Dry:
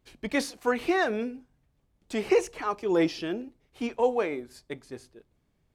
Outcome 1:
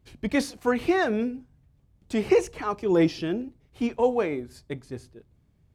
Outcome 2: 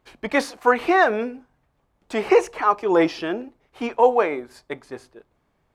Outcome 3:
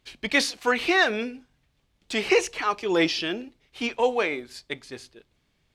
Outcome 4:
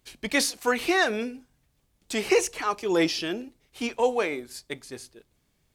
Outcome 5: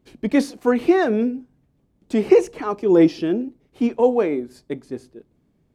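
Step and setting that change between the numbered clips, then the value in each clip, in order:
peaking EQ, frequency: 92 Hz, 1 kHz, 3.4 kHz, 16 kHz, 250 Hz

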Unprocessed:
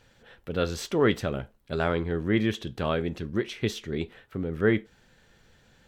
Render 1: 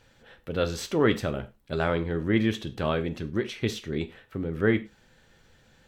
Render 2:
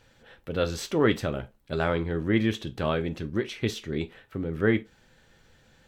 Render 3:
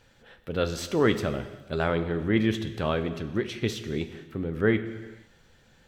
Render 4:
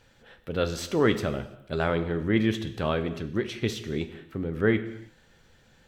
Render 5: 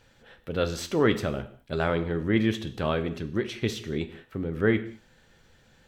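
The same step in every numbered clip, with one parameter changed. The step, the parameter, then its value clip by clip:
gated-style reverb, gate: 130 ms, 80 ms, 530 ms, 360 ms, 240 ms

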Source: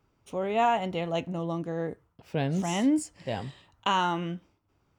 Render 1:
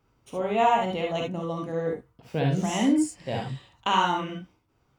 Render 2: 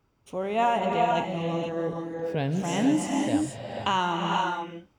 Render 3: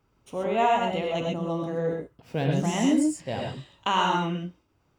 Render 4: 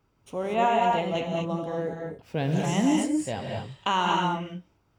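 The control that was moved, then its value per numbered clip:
gated-style reverb, gate: 90 ms, 510 ms, 150 ms, 260 ms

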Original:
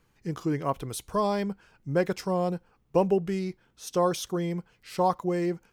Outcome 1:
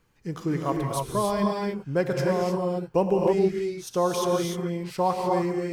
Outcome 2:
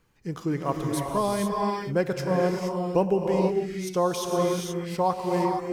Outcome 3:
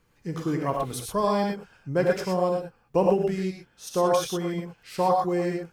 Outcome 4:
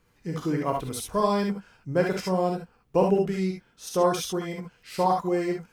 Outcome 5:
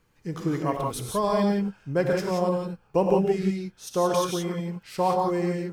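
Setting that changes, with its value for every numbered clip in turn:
gated-style reverb, gate: 330 ms, 500 ms, 140 ms, 90 ms, 200 ms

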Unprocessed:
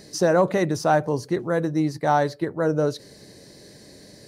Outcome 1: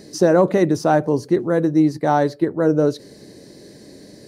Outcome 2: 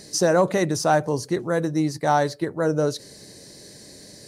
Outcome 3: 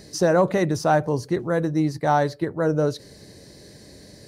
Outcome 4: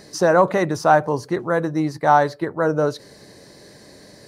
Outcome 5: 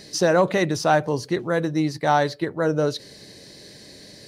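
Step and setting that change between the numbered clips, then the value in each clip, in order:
peaking EQ, frequency: 300 Hz, 8.2 kHz, 63 Hz, 1.1 kHz, 3.2 kHz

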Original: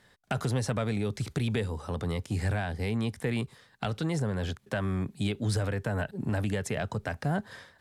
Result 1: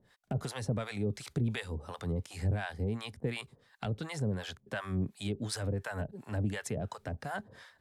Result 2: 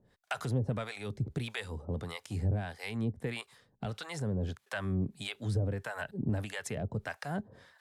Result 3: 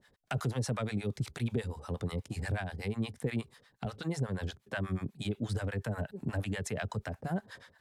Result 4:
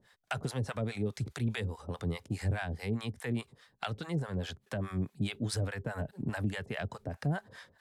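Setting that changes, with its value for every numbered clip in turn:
harmonic tremolo, rate: 2.8 Hz, 1.6 Hz, 8.3 Hz, 4.8 Hz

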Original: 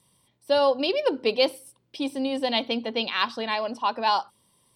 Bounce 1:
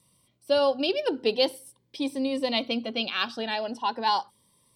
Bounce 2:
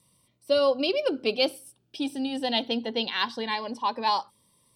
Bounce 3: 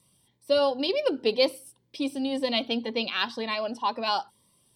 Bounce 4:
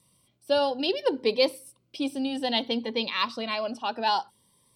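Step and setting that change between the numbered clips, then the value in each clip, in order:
Shepard-style phaser, rate: 0.41 Hz, 0.2 Hz, 2 Hz, 0.61 Hz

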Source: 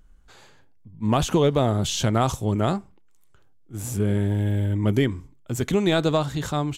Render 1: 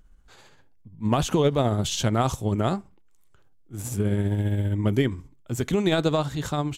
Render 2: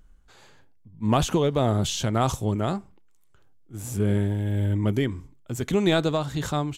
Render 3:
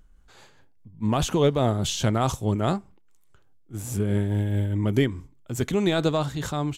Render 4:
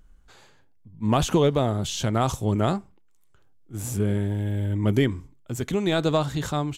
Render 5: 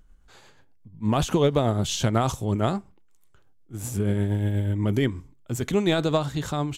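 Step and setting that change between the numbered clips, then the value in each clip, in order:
tremolo, rate: 15 Hz, 1.7 Hz, 4.8 Hz, 0.79 Hz, 8.3 Hz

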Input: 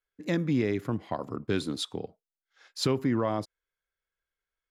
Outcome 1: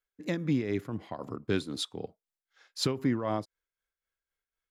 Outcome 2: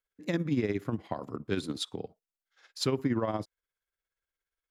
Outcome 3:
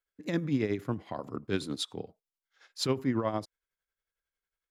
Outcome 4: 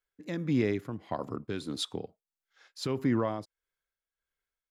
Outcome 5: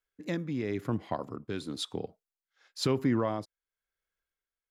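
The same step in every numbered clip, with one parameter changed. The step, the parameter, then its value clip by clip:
tremolo, rate: 3.9 Hz, 17 Hz, 11 Hz, 1.6 Hz, 0.98 Hz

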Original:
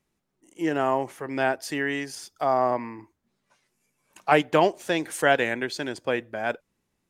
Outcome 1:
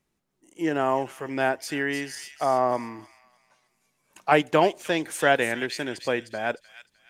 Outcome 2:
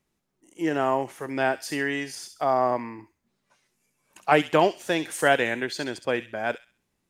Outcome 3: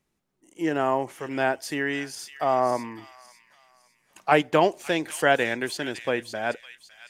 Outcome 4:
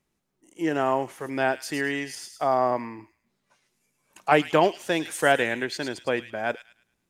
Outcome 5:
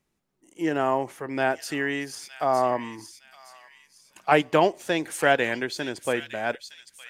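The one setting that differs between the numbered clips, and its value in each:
feedback echo behind a high-pass, time: 305 ms, 66 ms, 556 ms, 107 ms, 913 ms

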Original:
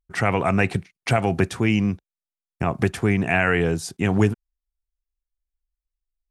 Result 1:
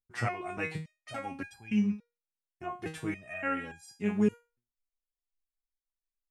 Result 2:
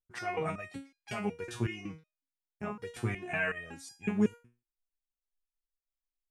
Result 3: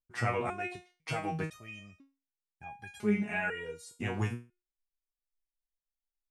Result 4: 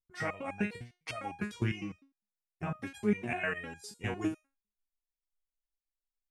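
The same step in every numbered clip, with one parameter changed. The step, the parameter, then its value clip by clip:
resonator arpeggio, rate: 3.5 Hz, 5.4 Hz, 2 Hz, 9.9 Hz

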